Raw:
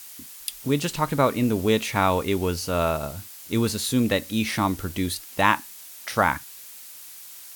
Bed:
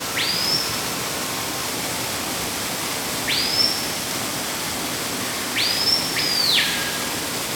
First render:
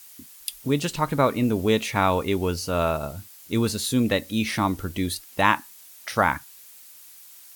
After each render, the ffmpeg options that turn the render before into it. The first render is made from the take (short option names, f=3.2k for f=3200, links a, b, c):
-af "afftdn=nr=6:nf=-43"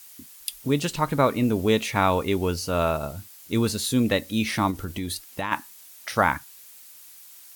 -filter_complex "[0:a]asplit=3[a][b][c];[a]afade=t=out:st=4.7:d=0.02[d];[b]acompressor=threshold=-25dB:ratio=6:attack=3.2:release=140:knee=1:detection=peak,afade=t=in:st=4.7:d=0.02,afade=t=out:st=5.51:d=0.02[e];[c]afade=t=in:st=5.51:d=0.02[f];[d][e][f]amix=inputs=3:normalize=0"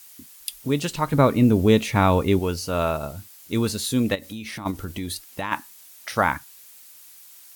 -filter_complex "[0:a]asettb=1/sr,asplit=3[a][b][c];[a]atrim=end=1.134[d];[b]atrim=start=1.13:end=2.39,asetpts=PTS-STARTPTS,afade=t=in:d=0.004:c=qsin,afade=t=out:st=1.256:d=0.004:c=qsin,lowshelf=f=350:g=8.5[e];[c]atrim=start=2.386[f];[d][e]acrossfade=d=0.004:c1=hsin:c2=qsin[g];[g][f]acrossfade=d=0.004:c1=qsin:c2=hsin,asplit=3[h][i][j];[h]afade=t=out:st=4.14:d=0.02[k];[i]acompressor=threshold=-30dB:ratio=12:attack=3.2:release=140:knee=1:detection=peak,afade=t=in:st=4.14:d=0.02,afade=t=out:st=4.65:d=0.02[l];[j]afade=t=in:st=4.65:d=0.02[m];[k][l][m]amix=inputs=3:normalize=0"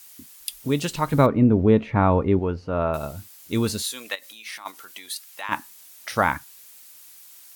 -filter_complex "[0:a]asettb=1/sr,asplit=3[a][b][c];[a]atrim=end=1.264[d];[b]atrim=start=1.26:end=2.94,asetpts=PTS-STARTPTS,afade=t=in:d=0.004:c=qsin,afade=t=out:st=1.676:d=0.004:c=qsin,lowpass=1.5k[e];[c]atrim=start=2.936[f];[d][e]acrossfade=d=0.004:c1=hsin:c2=qsin[g];[g][f]acrossfade=d=0.004:c1=qsin:c2=hsin,asettb=1/sr,asplit=3[h][i][j];[h]atrim=end=3.824[k];[i]atrim=start=3.82:end=5.49,asetpts=PTS-STARTPTS,afade=t=in:d=0.004:c=qsin,afade=t=out:st=1.666:d=0.004:c=qsin,highpass=1k[l];[j]atrim=start=5.486[m];[k][l]acrossfade=d=0.004:c1=hsin:c2=qsin[n];[n][m]acrossfade=d=0.004:c1=qsin:c2=hsin"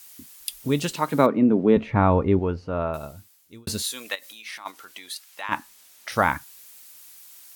-filter_complex "[0:a]asettb=1/sr,asplit=3[a][b][c];[a]atrim=end=0.924[d];[b]atrim=start=0.92:end=1.77,asetpts=PTS-STARTPTS,afade=t=in:d=0.004:c=qsin,afade=t=out:st=0.846:d=0.004:c=qsin,highpass=f=180:w=0.5412,highpass=f=180:w=1.3066[e];[c]atrim=start=1.766[f];[d][e]acrossfade=d=0.004:c1=hsin:c2=qsin[g];[g][f]acrossfade=d=0.004:c1=qsin:c2=hsin,asettb=1/sr,asplit=3[h][i][j];[h]atrim=end=4.414[k];[i]atrim=start=4.41:end=6.12,asetpts=PTS-STARTPTS,afade=t=in:d=0.004:c=qsin,afade=t=out:st=1.706:d=0.004:c=qsin,highshelf=f=8.1k:g=-7.5[l];[j]atrim=start=6.116[m];[k][l]acrossfade=d=0.004:c1=hsin:c2=qsin[n];[n][m]acrossfade=d=0.004:c1=qsin:c2=hsin,asplit=2[o][p];[o]atrim=end=3.67,asetpts=PTS-STARTPTS,afade=t=out:st=2.5:d=1.17[q];[p]atrim=start=3.67,asetpts=PTS-STARTPTS,afade=t=in:d=0.004:c=hsin[r];[q][r]concat=n=2:v=0:a=1"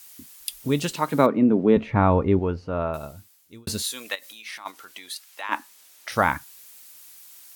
-filter_complex "[0:a]asettb=1/sr,asplit=3[a][b][c];[a]atrim=end=5.264[d];[b]atrim=start=5.26:end=6.1,asetpts=PTS-STARTPTS,afade=t=in:d=0.004:c=qsin,afade=t=out:st=0.836:d=0.004:c=qsin,highpass=f=250:w=0.5412,highpass=f=250:w=1.3066[e];[c]atrim=start=6.096[f];[d][e]acrossfade=d=0.004:c1=hsin:c2=qsin[g];[g][f]acrossfade=d=0.004:c1=qsin:c2=hsin"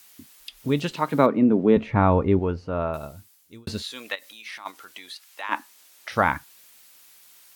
-filter_complex "[0:a]acrossover=split=4600[a][b];[b]acompressor=threshold=-49dB:ratio=4:attack=1:release=60[c];[a][c]amix=inputs=2:normalize=0"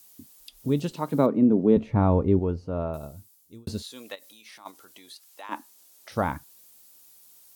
-af "equalizer=f=2k:w=0.58:g=-13"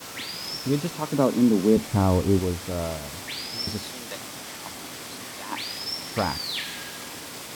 -filter_complex "[1:a]volume=-12.5dB[a];[0:a][a]amix=inputs=2:normalize=0"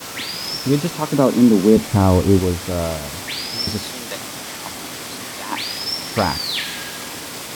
-af "volume=7dB,alimiter=limit=-2dB:level=0:latency=1"